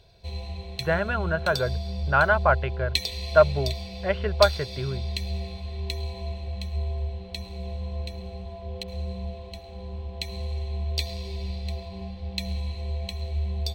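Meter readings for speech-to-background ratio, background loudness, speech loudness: 7.5 dB, -32.5 LUFS, -25.0 LUFS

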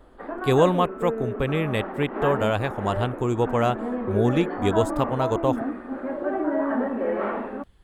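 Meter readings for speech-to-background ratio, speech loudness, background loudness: 5.0 dB, -24.5 LUFS, -29.5 LUFS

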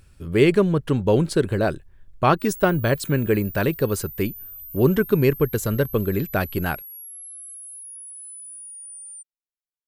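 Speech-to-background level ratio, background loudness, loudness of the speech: 14.5 dB, -36.5 LUFS, -22.0 LUFS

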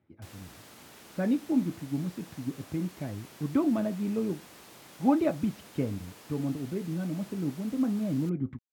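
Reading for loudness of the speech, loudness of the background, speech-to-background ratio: -31.5 LUFS, -50.0 LUFS, 18.5 dB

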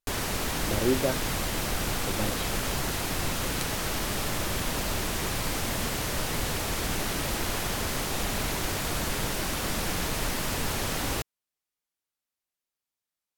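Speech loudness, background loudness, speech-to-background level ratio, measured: -33.0 LUFS, -29.5 LUFS, -3.5 dB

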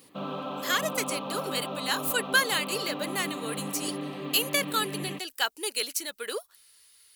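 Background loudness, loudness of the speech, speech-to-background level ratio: -36.0 LUFS, -29.5 LUFS, 6.5 dB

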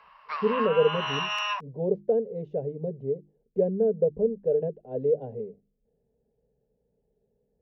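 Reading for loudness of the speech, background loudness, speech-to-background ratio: -28.0 LUFS, -30.0 LUFS, 2.0 dB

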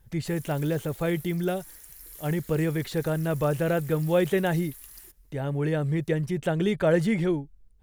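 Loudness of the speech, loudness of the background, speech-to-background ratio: -27.0 LUFS, -45.5 LUFS, 18.5 dB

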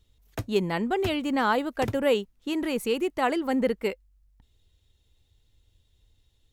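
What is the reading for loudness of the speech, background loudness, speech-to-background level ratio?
-27.0 LUFS, -39.5 LUFS, 12.5 dB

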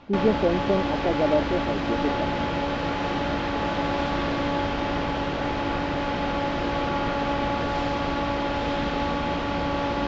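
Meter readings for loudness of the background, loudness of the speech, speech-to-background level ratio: -26.5 LUFS, -26.5 LUFS, 0.0 dB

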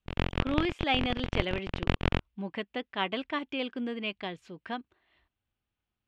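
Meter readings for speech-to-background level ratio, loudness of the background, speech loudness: 0.0 dB, -33.5 LUFS, -33.5 LUFS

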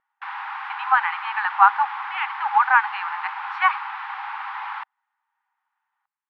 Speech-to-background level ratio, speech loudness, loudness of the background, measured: 10.5 dB, -21.0 LUFS, -31.5 LUFS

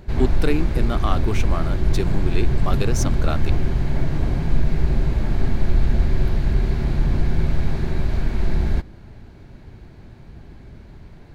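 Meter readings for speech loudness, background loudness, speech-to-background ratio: -27.5 LUFS, -23.5 LUFS, -4.0 dB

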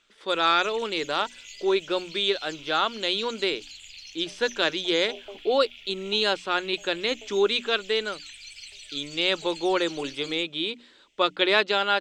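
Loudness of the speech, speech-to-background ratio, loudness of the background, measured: -25.5 LUFS, 17.0 dB, -42.5 LUFS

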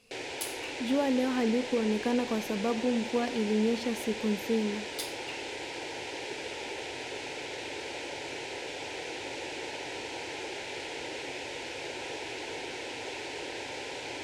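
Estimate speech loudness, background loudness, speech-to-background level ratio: -31.0 LUFS, -37.5 LUFS, 6.5 dB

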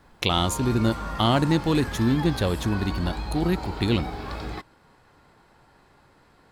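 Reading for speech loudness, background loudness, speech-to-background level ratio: -24.5 LUFS, -34.0 LUFS, 9.5 dB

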